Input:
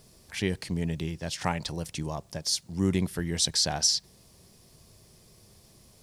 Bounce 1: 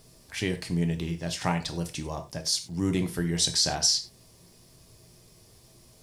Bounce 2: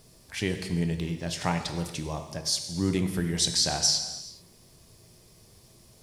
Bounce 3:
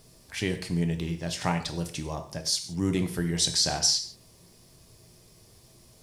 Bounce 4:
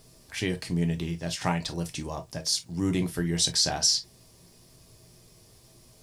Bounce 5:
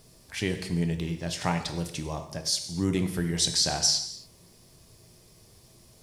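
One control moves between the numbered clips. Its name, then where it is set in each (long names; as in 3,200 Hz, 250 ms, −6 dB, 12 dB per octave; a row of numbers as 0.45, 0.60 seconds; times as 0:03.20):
reverb whose tail is shaped and stops, gate: 130, 460, 200, 80, 310 milliseconds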